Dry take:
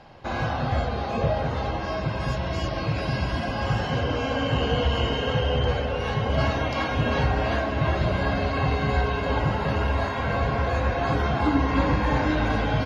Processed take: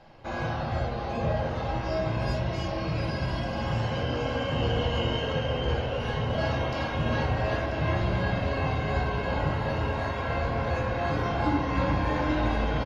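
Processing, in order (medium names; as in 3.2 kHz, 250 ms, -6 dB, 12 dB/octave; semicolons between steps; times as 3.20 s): 1.67–2.40 s: doubling 16 ms -3 dB; delay 988 ms -10.5 dB; simulated room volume 96 m³, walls mixed, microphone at 0.67 m; trim -6.5 dB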